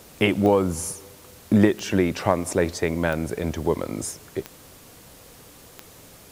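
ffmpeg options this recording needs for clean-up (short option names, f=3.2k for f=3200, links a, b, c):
-af "adeclick=t=4,afwtdn=0.0035"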